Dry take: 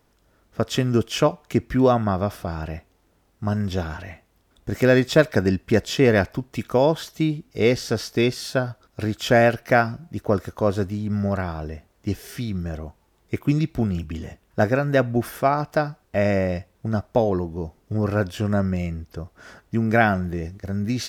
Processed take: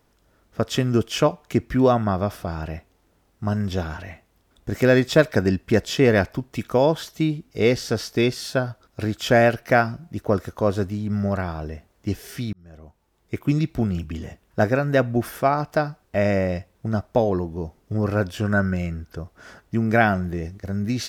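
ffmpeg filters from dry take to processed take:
ffmpeg -i in.wav -filter_complex "[0:a]asettb=1/sr,asplit=3[link_01][link_02][link_03];[link_01]atrim=end=18.434[link_04];[link_02]atrim=start=18.43:end=19.15,asetpts=PTS-STARTPTS,afade=type=in:duration=0.004:curve=qsin,afade=type=out:start_time=0.716:duration=0.004:curve=qsin,equalizer=frequency=1500:width=7.9:gain=14.5[link_05];[link_03]atrim=start=19.146[link_06];[link_04][link_05]acrossfade=duration=0.004:curve1=hsin:curve2=qsin[link_07];[link_07][link_06]acrossfade=duration=0.004:curve1=qsin:curve2=hsin,asplit=2[link_08][link_09];[link_08]atrim=end=12.53,asetpts=PTS-STARTPTS,afade=type=out:start_time=12.526:duration=0.004:curve=hsin[link_10];[link_09]atrim=start=12.53,asetpts=PTS-STARTPTS,afade=type=in:duration=1.03[link_11];[link_10][link_11]concat=n=2:v=0:a=1" out.wav

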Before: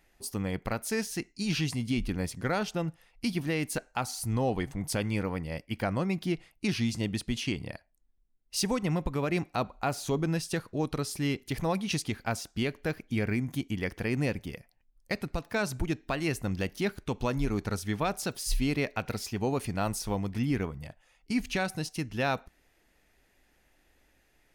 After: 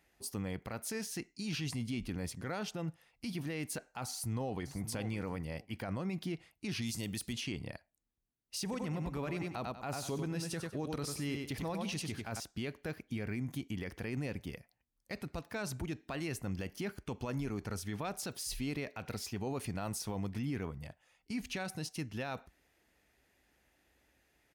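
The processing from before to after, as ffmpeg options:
ffmpeg -i in.wav -filter_complex "[0:a]asplit=2[link_01][link_02];[link_02]afade=type=in:start_time=4.09:duration=0.01,afade=type=out:start_time=4.88:duration=0.01,aecho=0:1:560|1120:0.211349|0.0317023[link_03];[link_01][link_03]amix=inputs=2:normalize=0,asettb=1/sr,asplit=3[link_04][link_05][link_06];[link_04]atrim=end=6.824[link_07];[link_05]atrim=start=6.82:end=7.33,asetpts=PTS-STARTPTS,afade=type=in:duration=0.004:curve=qsin,afade=type=out:start_time=0.506:duration=0.004:curve=qsin,aemphasis=mode=production:type=75fm[link_08];[link_06]atrim=start=7.326[link_09];[link_07][link_08]acrossfade=duration=0.004:curve1=hsin:curve2=qsin[link_10];[link_10][link_09]acrossfade=duration=0.004:curve1=qsin:curve2=hsin,asettb=1/sr,asplit=3[link_11][link_12][link_13];[link_11]atrim=end=8.634[link_14];[link_12]atrim=start=8.63:end=12.4,asetpts=PTS-STARTPTS,afade=type=in:duration=0.004:curve=qsin,afade=type=out:start_time=3.766:duration=0.004:curve=qsin,aecho=1:1:96|192|288:0.422|0.11|0.0285,atrim=end_sample=166257[link_15];[link_13]atrim=start=12.396[link_16];[link_14][link_15]acrossfade=duration=0.004:curve1=hsin:curve2=qsin[link_17];[link_17][link_16]acrossfade=duration=0.004:curve1=qsin:curve2=hsin,asettb=1/sr,asplit=3[link_18][link_19][link_20];[link_18]atrim=end=16.434[link_21];[link_19]atrim=start=16.43:end=17.79,asetpts=PTS-STARTPTS,afade=type=in:duration=0.004:curve=qsin,afade=type=out:start_time=1.356:duration=0.004:curve=qsin,bandreject=frequency=3800:width=6.6[link_22];[link_20]atrim=start=17.786[link_23];[link_21][link_22]acrossfade=duration=0.004:curve1=hsin:curve2=qsin[link_24];[link_24][link_23]acrossfade=duration=0.004:curve1=qsin:curve2=hsin,highpass=frequency=47:width=0.5412,highpass=frequency=47:width=1.3066,alimiter=level_in=1.5dB:limit=-24dB:level=0:latency=1:release=28,volume=-1.5dB,volume=-4dB" out.wav

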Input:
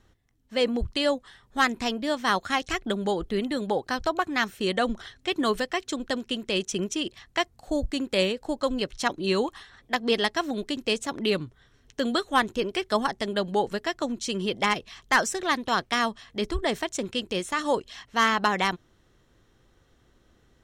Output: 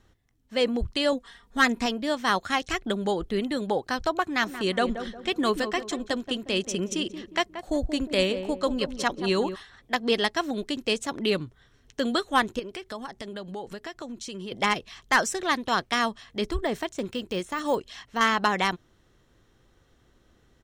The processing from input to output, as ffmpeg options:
ffmpeg -i in.wav -filter_complex "[0:a]asettb=1/sr,asplit=3[link_01][link_02][link_03];[link_01]atrim=end=1.124[link_04];[link_02]atrim=start=1.12:end=1.86,asetpts=PTS-STARTPTS,afade=type=in:duration=0.004:curve=qsin,afade=type=out:start_time=0.736:duration=0.004:curve=qsin,aecho=1:1:4.3:0.66,atrim=end_sample=32634[link_05];[link_03]atrim=start=1.856[link_06];[link_04][link_05]acrossfade=duration=0.004:curve1=hsin:curve2=qsin[link_07];[link_07][link_06]acrossfade=duration=0.004:curve1=qsin:curve2=hsin,asplit=3[link_08][link_09][link_10];[link_08]afade=type=out:start_time=4.4:duration=0.02[link_11];[link_09]asplit=2[link_12][link_13];[link_13]adelay=179,lowpass=frequency=1000:poles=1,volume=-8.5dB,asplit=2[link_14][link_15];[link_15]adelay=179,lowpass=frequency=1000:poles=1,volume=0.42,asplit=2[link_16][link_17];[link_17]adelay=179,lowpass=frequency=1000:poles=1,volume=0.42,asplit=2[link_18][link_19];[link_19]adelay=179,lowpass=frequency=1000:poles=1,volume=0.42,asplit=2[link_20][link_21];[link_21]adelay=179,lowpass=frequency=1000:poles=1,volume=0.42[link_22];[link_12][link_14][link_16][link_18][link_20][link_22]amix=inputs=6:normalize=0,afade=type=in:start_time=4.4:duration=0.02,afade=type=out:start_time=9.54:duration=0.02[link_23];[link_10]afade=type=in:start_time=9.54:duration=0.02[link_24];[link_11][link_23][link_24]amix=inputs=3:normalize=0,asettb=1/sr,asplit=3[link_25][link_26][link_27];[link_25]atrim=end=12.594[link_28];[link_26]atrim=start=12.59:end=14.52,asetpts=PTS-STARTPTS,afade=type=in:duration=0.004:curve=qsin,afade=type=out:start_time=1.926:duration=0.004:curve=qsin,acompressor=threshold=-36dB:ratio=3:attack=3.2:release=140:knee=1:detection=peak[link_29];[link_27]atrim=start=14.516[link_30];[link_28][link_29]acrossfade=duration=0.004:curve1=hsin:curve2=qsin[link_31];[link_31][link_30]acrossfade=duration=0.004:curve1=qsin:curve2=hsin,asettb=1/sr,asplit=3[link_32][link_33][link_34];[link_32]atrim=end=16.504[link_35];[link_33]atrim=start=16.5:end=18.21,asetpts=PTS-STARTPTS,afade=type=in:duration=0.004:curve=qsin,afade=type=out:start_time=1.706:duration=0.004:curve=qsin,deesser=0.95[link_36];[link_34]atrim=start=18.206[link_37];[link_35][link_36]acrossfade=duration=0.004:curve1=hsin:curve2=qsin[link_38];[link_38][link_37]acrossfade=duration=0.004:curve1=qsin:curve2=hsin" out.wav

